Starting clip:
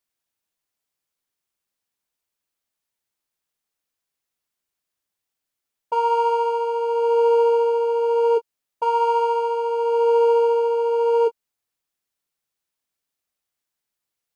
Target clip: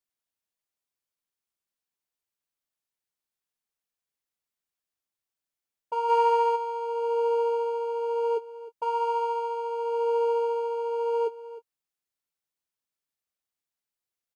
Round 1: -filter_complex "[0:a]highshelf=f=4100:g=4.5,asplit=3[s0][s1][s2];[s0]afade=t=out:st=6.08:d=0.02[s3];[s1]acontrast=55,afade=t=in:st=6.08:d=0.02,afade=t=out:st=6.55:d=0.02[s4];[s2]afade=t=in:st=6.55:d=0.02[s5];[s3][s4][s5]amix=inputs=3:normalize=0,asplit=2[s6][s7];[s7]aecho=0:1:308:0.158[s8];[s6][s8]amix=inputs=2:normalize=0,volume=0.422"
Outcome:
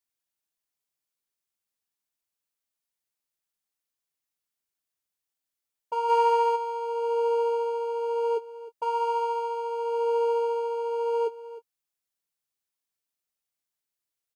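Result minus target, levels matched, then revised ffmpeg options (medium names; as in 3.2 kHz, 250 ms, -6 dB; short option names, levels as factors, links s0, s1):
8 kHz band +3.5 dB
-filter_complex "[0:a]asplit=3[s0][s1][s2];[s0]afade=t=out:st=6.08:d=0.02[s3];[s1]acontrast=55,afade=t=in:st=6.08:d=0.02,afade=t=out:st=6.55:d=0.02[s4];[s2]afade=t=in:st=6.55:d=0.02[s5];[s3][s4][s5]amix=inputs=3:normalize=0,asplit=2[s6][s7];[s7]aecho=0:1:308:0.158[s8];[s6][s8]amix=inputs=2:normalize=0,volume=0.422"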